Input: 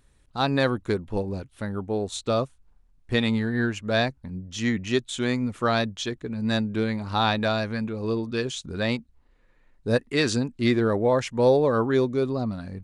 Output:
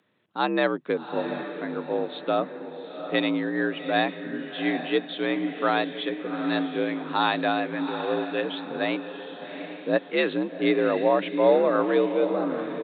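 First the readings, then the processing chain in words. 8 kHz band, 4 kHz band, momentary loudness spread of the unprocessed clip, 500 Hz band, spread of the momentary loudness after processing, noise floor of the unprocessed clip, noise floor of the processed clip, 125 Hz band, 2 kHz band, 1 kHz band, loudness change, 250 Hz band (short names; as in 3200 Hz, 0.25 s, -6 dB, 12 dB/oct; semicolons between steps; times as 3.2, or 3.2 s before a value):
under -40 dB, -2.0 dB, 9 LU, +0.5 dB, 11 LU, -61 dBFS, -42 dBFS, -11.5 dB, +1.0 dB, +2.0 dB, -0.5 dB, -1.0 dB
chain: downsampling 8000 Hz; HPF 180 Hz 12 dB/oct; on a send: diffused feedback echo 0.763 s, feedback 43%, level -9 dB; on the sum: frequency shift +59 Hz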